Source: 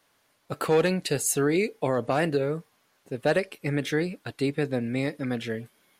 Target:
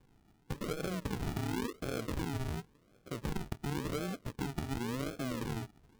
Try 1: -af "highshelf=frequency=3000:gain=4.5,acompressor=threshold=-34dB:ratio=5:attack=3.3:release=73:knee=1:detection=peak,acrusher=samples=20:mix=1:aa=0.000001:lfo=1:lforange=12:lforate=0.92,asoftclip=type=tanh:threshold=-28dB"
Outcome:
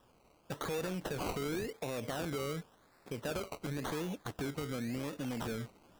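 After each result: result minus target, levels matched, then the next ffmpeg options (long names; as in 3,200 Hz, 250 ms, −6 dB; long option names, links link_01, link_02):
soft clipping: distortion +17 dB; sample-and-hold swept by an LFO: distortion −15 dB
-af "highshelf=frequency=3000:gain=4.5,acompressor=threshold=-34dB:ratio=5:attack=3.3:release=73:knee=1:detection=peak,acrusher=samples=20:mix=1:aa=0.000001:lfo=1:lforange=12:lforate=0.92,asoftclip=type=tanh:threshold=-17dB"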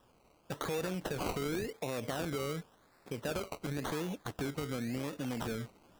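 sample-and-hold swept by an LFO: distortion −15 dB
-af "highshelf=frequency=3000:gain=4.5,acompressor=threshold=-34dB:ratio=5:attack=3.3:release=73:knee=1:detection=peak,acrusher=samples=65:mix=1:aa=0.000001:lfo=1:lforange=39:lforate=0.92,asoftclip=type=tanh:threshold=-17dB"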